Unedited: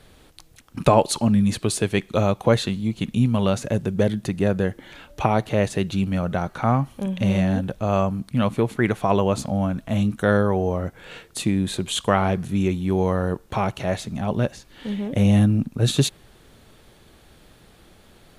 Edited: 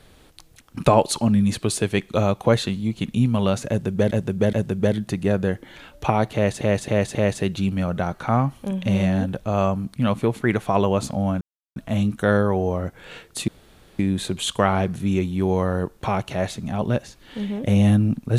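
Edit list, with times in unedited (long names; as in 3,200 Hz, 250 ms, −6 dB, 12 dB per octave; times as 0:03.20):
0:03.69–0:04.11: repeat, 3 plays
0:05.50–0:05.77: repeat, 4 plays
0:09.76: splice in silence 0.35 s
0:11.48: splice in room tone 0.51 s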